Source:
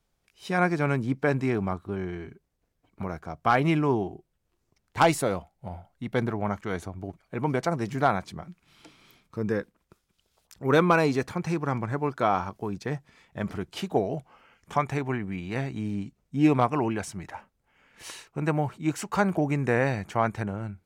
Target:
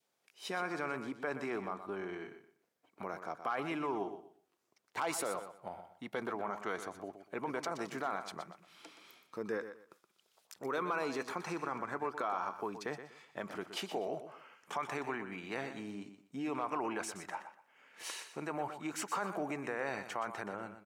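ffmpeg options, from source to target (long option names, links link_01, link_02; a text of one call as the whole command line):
ffmpeg -i in.wav -af "adynamicequalizer=threshold=0.00891:dfrequency=1200:dqfactor=1.9:tfrequency=1200:tqfactor=1.9:attack=5:release=100:ratio=0.375:range=3:mode=boostabove:tftype=bell,alimiter=limit=-20dB:level=0:latency=1:release=39,acompressor=threshold=-36dB:ratio=1.5,highpass=350,aecho=1:1:122|244|366:0.299|0.0716|0.0172,volume=-1.5dB" out.wav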